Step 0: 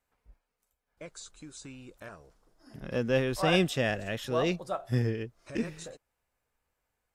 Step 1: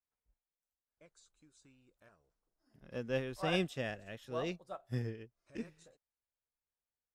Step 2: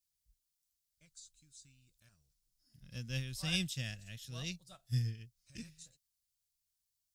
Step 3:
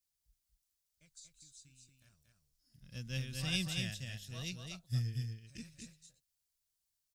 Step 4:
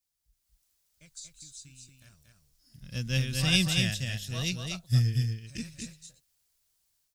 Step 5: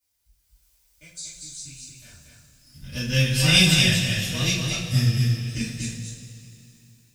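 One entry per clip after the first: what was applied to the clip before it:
expander for the loud parts 1.5 to 1, over −48 dBFS; level −7.5 dB
drawn EQ curve 140 Hz 0 dB, 410 Hz −23 dB, 1,100 Hz −19 dB, 4,700 Hz +6 dB; level +5 dB
single-tap delay 234 ms −4.5 dB; level −1 dB
automatic gain control gain up to 9.5 dB; level +1.5 dB
convolution reverb RT60 2.8 s, pre-delay 3 ms, DRR −9.5 dB

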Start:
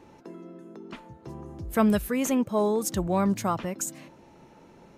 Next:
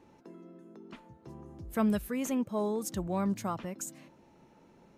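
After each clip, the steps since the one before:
parametric band 220 Hz +2.5 dB
level −8 dB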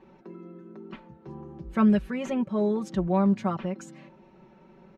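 low-pass filter 3,100 Hz 12 dB per octave
comb filter 5.3 ms, depth 83%
level +3.5 dB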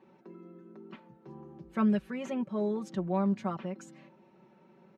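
high-pass filter 130 Hz 12 dB per octave
level −5.5 dB

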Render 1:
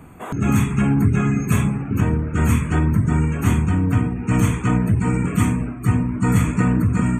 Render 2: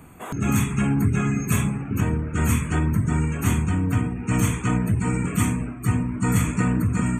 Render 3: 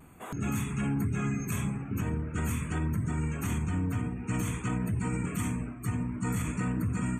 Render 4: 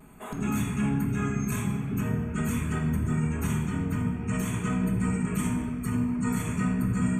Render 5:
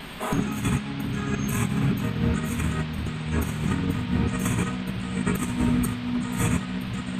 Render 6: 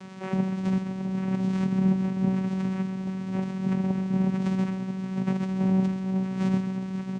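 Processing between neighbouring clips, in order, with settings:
high-shelf EQ 3,000 Hz +7.5 dB; level −4 dB
brickwall limiter −15 dBFS, peak gain reduction 7 dB; pitch vibrato 0.47 Hz 18 cents; level −7 dB
convolution reverb RT60 2.0 s, pre-delay 5 ms, DRR 1 dB
compressor whose output falls as the input rises −31 dBFS, ratio −0.5; noise in a band 430–3,600 Hz −48 dBFS; level +6 dB
single-tap delay 132 ms −9.5 dB; channel vocoder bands 4, saw 189 Hz

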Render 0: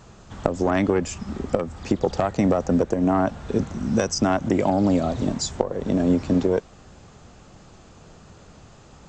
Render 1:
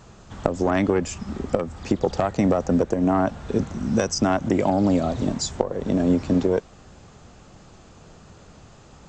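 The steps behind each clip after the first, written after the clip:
no processing that can be heard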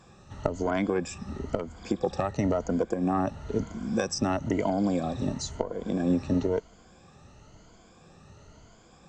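rippled gain that drifts along the octave scale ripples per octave 1.8, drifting +1 Hz, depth 12 dB
level −7.5 dB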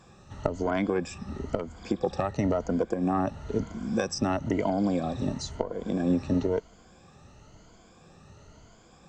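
dynamic equaliser 7,000 Hz, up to −5 dB, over −58 dBFS, Q 2.9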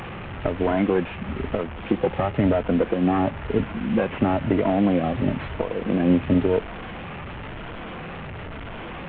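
linear delta modulator 16 kbit/s, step −35 dBFS
level +6.5 dB

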